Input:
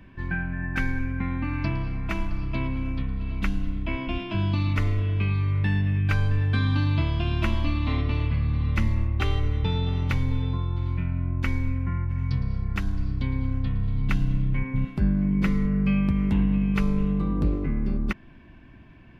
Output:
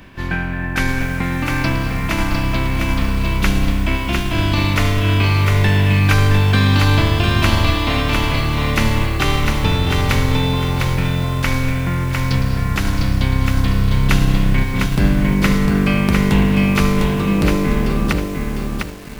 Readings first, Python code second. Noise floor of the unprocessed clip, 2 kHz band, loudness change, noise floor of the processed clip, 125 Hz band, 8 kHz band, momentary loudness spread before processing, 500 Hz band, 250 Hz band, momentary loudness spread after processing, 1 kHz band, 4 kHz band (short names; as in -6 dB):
-48 dBFS, +13.5 dB, +9.0 dB, -22 dBFS, +8.0 dB, n/a, 7 LU, +14.5 dB, +8.5 dB, 6 LU, +15.0 dB, +17.0 dB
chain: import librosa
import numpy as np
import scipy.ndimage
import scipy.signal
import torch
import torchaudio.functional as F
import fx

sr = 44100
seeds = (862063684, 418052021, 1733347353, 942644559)

y = fx.spec_flatten(x, sr, power=0.67)
y = fx.echo_crushed(y, sr, ms=703, feedback_pct=35, bits=7, wet_db=-3.5)
y = y * 10.0 ** (7.0 / 20.0)